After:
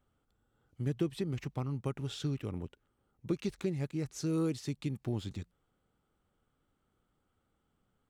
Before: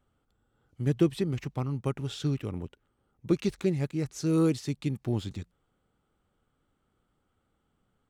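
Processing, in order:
downward compressor 2 to 1, threshold −29 dBFS, peak gain reduction 6.5 dB
level −3 dB

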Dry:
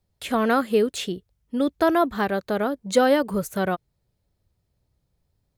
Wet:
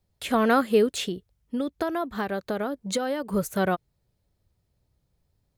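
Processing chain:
0:01.05–0:03.33: downward compressor 6 to 1, threshold −25 dBFS, peak gain reduction 12 dB

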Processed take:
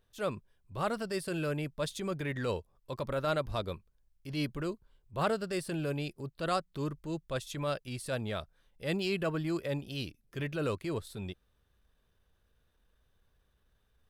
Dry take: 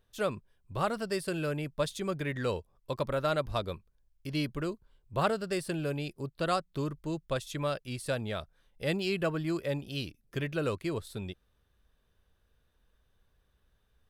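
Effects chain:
transient designer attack −6 dB, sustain −1 dB

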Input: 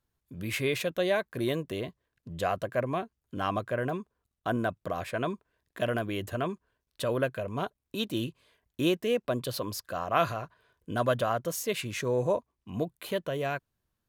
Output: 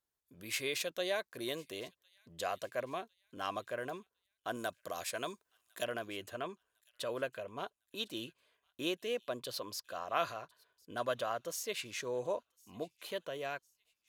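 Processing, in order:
bass and treble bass −12 dB, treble +5 dB, from 0:04.54 treble +14 dB, from 0:05.83 treble −1 dB
delay with a high-pass on its return 1,055 ms, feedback 39%, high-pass 2,900 Hz, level −21 dB
dynamic equaliser 5,100 Hz, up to +6 dB, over −51 dBFS, Q 0.75
level −8 dB

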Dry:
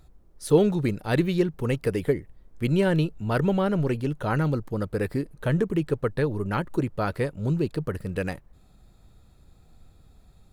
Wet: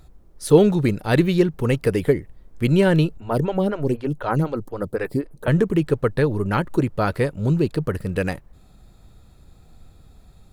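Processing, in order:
0:03.17–0:05.48: phaser with staggered stages 4 Hz
level +5.5 dB

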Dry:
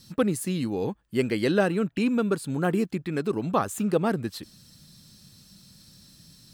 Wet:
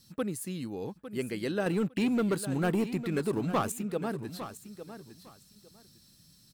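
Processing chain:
0:01.66–0:03.72: leveller curve on the samples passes 2
high-shelf EQ 9,300 Hz +6.5 dB
repeating echo 855 ms, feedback 19%, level −12 dB
level −9 dB

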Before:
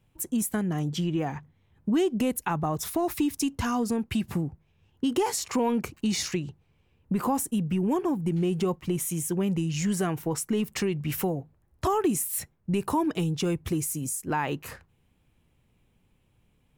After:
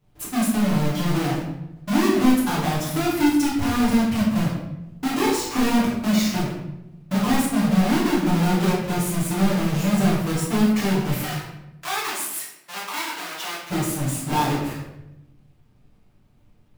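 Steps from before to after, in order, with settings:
each half-wave held at its own peak
0:11.18–0:13.70: high-pass filter 1,000 Hz 12 dB per octave
convolution reverb RT60 0.90 s, pre-delay 7 ms, DRR −7.5 dB
level −7.5 dB

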